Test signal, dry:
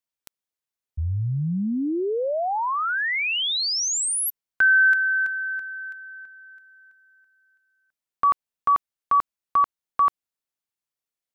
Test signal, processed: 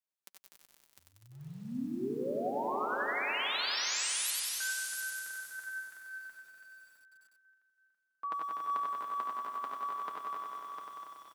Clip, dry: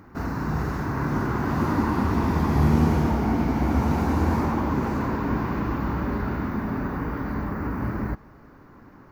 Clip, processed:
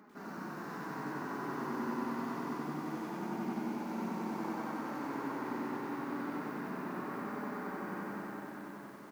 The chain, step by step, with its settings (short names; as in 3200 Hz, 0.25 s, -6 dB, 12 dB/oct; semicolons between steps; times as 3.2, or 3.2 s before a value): reverse; compressor 6:1, threshold -32 dBFS; reverse; feedback echo 0.247 s, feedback 47%, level -7.5 dB; flange 0.27 Hz, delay 4.7 ms, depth 3.3 ms, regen +34%; HPF 200 Hz 24 dB/oct; on a send: tapped delay 73/85/172/204/694/703 ms -8.5/-9/-13/-18.5/-18.5/-6 dB; on the sum: lo-fi delay 94 ms, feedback 80%, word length 10-bit, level -3 dB; gain -3.5 dB